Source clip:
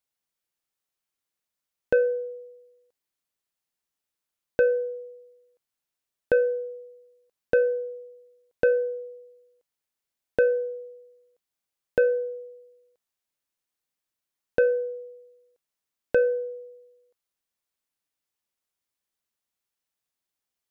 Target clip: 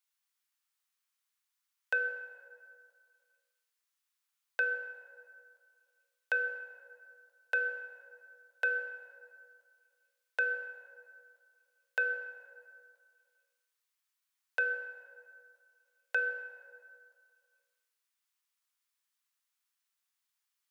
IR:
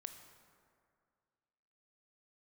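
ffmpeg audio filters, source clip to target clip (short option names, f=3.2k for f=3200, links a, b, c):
-filter_complex "[0:a]highpass=f=990:w=0.5412,highpass=f=990:w=1.3066[a];[1:a]atrim=start_sample=2205[b];[a][b]afir=irnorm=-1:irlink=0,volume=6.5dB"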